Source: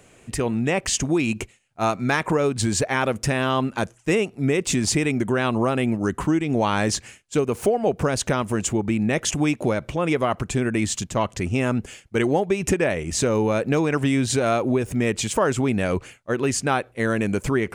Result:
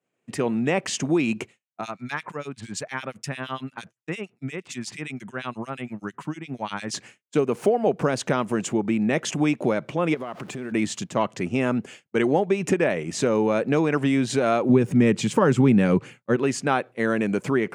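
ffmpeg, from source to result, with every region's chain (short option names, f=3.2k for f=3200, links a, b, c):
-filter_complex "[0:a]asettb=1/sr,asplit=3[a][b][c];[a]atrim=end=1.814[d];[b]atrim=start=1.81:end=6.94,asetpts=PTS-STARTPTS,afade=t=in:d=0.004:c=qsin,afade=t=out:st=5.126:d=0.004:c=qsin,equalizer=f=410:w=0.58:g=-10,acrossover=split=2200[e][f];[e]aeval=exprs='val(0)*(1-1/2+1/2*cos(2*PI*8.7*n/s))':c=same[g];[f]aeval=exprs='val(0)*(1-1/2-1/2*cos(2*PI*8.7*n/s))':c=same[h];[g][h]amix=inputs=2:normalize=0[i];[c]atrim=start=6.936[j];[d][i]acrossfade=d=0.004:c1=hsin:c2=qsin[k];[k][j]acrossfade=d=0.004:c1=qsin:c2=hsin,asettb=1/sr,asplit=3[l][m][n];[l]atrim=end=10.144[o];[m]atrim=start=10.14:end=10.72,asetpts=PTS-STARTPTS,afade=t=in:d=0.004:c=qsin,afade=t=out:st=0.576:d=0.004:c=qsin,aeval=exprs='val(0)+0.5*0.015*sgn(val(0))':c=same,highpass=100,acompressor=threshold=-27dB:ratio=16:attack=3.2:release=140:knee=1:detection=peak[p];[n]atrim=start=10.716[q];[o][p]acrossfade=d=0.004:c1=hsin:c2=qsin[r];[r][q]acrossfade=d=0.004:c1=qsin:c2=hsin,asettb=1/sr,asplit=3[s][t][u];[s]atrim=end=14.694[v];[t]atrim=start=14.69:end=16.36,asetpts=PTS-STARTPTS,afade=t=in:d=0.004:c=qsin,afade=t=out:st=1.666:d=0.004:c=qsin,asuperstop=centerf=660:order=4:qfactor=6.8,equalizer=f=140:t=o:w=1.9:g=10[w];[u]atrim=start=16.356[x];[v][w]acrossfade=d=0.004:c1=hsin:c2=qsin[y];[y][x]acrossfade=d=0.004:c1=qsin:c2=hsin,lowpass=f=3.4k:p=1,agate=range=-33dB:threshold=-38dB:ratio=3:detection=peak,highpass=f=140:w=0.5412,highpass=f=140:w=1.3066"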